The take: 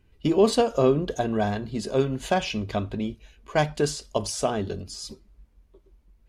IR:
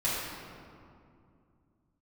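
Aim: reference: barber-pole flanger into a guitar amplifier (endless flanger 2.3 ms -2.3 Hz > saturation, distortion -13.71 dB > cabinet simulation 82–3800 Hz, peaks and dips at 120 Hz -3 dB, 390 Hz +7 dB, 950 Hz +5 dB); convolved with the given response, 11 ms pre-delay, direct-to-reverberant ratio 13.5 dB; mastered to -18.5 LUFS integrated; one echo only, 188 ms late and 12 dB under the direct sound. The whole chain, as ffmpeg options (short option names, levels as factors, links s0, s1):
-filter_complex "[0:a]aecho=1:1:188:0.251,asplit=2[s0][s1];[1:a]atrim=start_sample=2205,adelay=11[s2];[s1][s2]afir=irnorm=-1:irlink=0,volume=0.0708[s3];[s0][s3]amix=inputs=2:normalize=0,asplit=2[s4][s5];[s5]adelay=2.3,afreqshift=-2.3[s6];[s4][s6]amix=inputs=2:normalize=1,asoftclip=threshold=0.133,highpass=82,equalizer=f=120:t=q:w=4:g=-3,equalizer=f=390:t=q:w=4:g=7,equalizer=f=950:t=q:w=4:g=5,lowpass=f=3800:w=0.5412,lowpass=f=3800:w=1.3066,volume=2.51"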